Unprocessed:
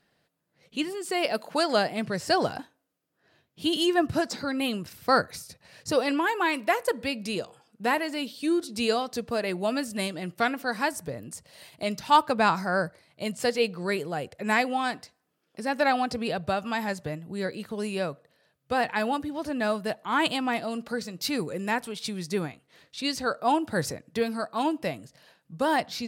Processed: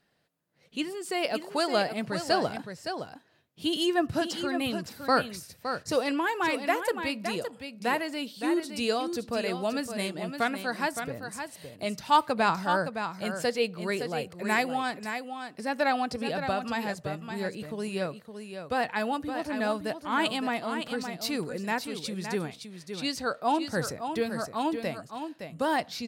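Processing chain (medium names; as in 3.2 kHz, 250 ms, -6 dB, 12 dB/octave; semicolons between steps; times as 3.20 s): 14.06–14.72 s: treble shelf 9.7 kHz +8.5 dB; delay 565 ms -8 dB; trim -2.5 dB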